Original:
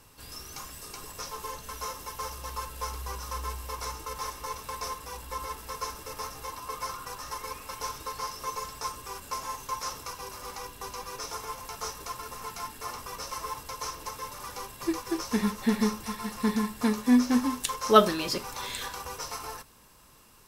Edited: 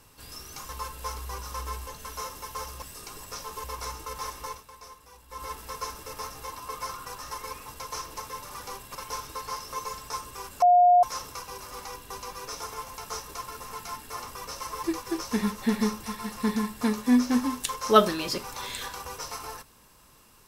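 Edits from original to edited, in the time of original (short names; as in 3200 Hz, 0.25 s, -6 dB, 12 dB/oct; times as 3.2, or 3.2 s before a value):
0.69–1.51 swap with 2.46–3.64
4.46–5.47 dip -12 dB, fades 0.19 s
9.33–9.74 bleep 713 Hz -14 dBFS
13.55–14.84 move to 7.66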